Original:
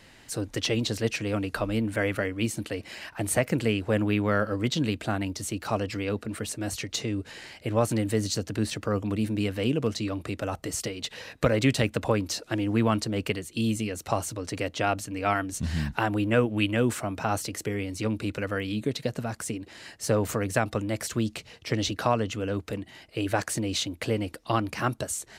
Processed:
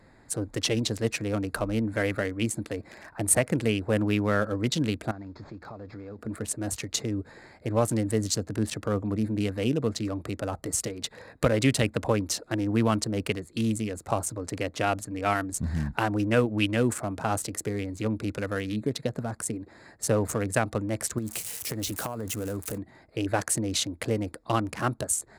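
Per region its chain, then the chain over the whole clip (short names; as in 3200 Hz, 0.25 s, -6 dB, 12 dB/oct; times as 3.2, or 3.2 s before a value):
5.11–6.19 CVSD 32 kbps + compressor, threshold -37 dBFS
21.18–22.78 switching spikes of -25.5 dBFS + compressor 16:1, threshold -27 dBFS
whole clip: Wiener smoothing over 15 samples; bell 9900 Hz +9.5 dB 1.1 oct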